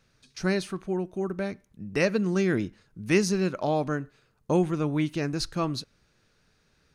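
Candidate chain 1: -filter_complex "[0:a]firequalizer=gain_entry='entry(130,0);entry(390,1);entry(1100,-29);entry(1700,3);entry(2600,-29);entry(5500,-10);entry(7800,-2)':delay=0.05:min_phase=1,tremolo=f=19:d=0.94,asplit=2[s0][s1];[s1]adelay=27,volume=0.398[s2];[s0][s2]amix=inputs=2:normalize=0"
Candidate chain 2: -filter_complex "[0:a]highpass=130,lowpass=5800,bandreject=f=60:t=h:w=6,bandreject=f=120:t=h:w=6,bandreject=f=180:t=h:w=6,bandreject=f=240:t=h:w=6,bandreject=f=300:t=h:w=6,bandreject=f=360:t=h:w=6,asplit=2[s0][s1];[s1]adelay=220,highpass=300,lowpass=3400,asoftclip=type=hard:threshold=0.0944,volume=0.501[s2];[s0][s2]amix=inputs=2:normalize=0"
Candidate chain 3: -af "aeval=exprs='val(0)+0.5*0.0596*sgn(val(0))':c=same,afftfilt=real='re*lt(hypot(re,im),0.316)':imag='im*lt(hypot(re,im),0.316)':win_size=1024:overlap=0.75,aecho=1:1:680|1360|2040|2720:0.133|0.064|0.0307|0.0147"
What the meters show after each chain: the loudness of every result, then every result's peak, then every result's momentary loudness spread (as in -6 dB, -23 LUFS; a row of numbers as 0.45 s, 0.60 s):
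-32.0 LUFS, -28.5 LUFS, -29.5 LUFS; -11.5 dBFS, -11.5 dBFS, -13.0 dBFS; 12 LU, 11 LU, 4 LU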